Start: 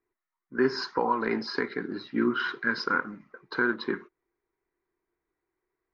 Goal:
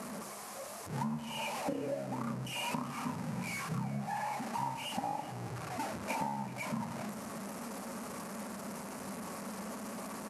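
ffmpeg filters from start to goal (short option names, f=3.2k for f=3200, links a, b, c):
-filter_complex "[0:a]aeval=exprs='val(0)+0.5*0.0422*sgn(val(0))':c=same,highpass=220,agate=range=-7dB:threshold=-33dB:ratio=16:detection=peak,equalizer=f=6k:w=2.1:g=-7.5,bandreject=f=50:t=h:w=6,bandreject=f=100:t=h:w=6,bandreject=f=150:t=h:w=6,bandreject=f=200:t=h:w=6,bandreject=f=250:t=h:w=6,bandreject=f=300:t=h:w=6,bandreject=f=350:t=h:w=6,acompressor=threshold=-34dB:ratio=10,asplit=2[a][b];[b]adelay=221.6,volume=-16dB,highshelf=f=4k:g=-4.99[c];[a][c]amix=inputs=2:normalize=0,asetrate=25442,aresample=44100"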